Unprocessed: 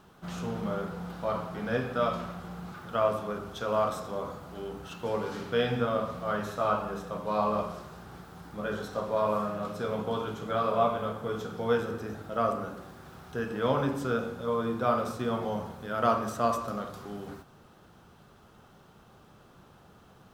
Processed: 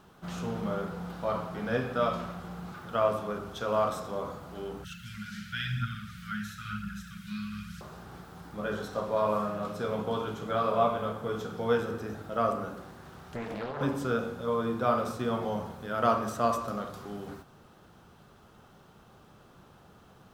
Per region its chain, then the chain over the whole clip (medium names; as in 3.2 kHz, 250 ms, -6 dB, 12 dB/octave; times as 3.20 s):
4.84–7.81 s: Chebyshev band-stop 210–1400 Hz, order 5 + phaser 1 Hz, delay 4.6 ms, feedback 40% + tape noise reduction on one side only encoder only
12.82–13.81 s: compression 12:1, threshold -31 dBFS + loudspeaker Doppler distortion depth 0.7 ms
whole clip: none